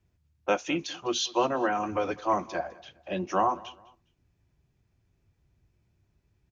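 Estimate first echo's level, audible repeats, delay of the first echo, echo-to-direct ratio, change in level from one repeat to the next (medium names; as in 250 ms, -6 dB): -21.5 dB, 2, 204 ms, -21.0 dB, -10.0 dB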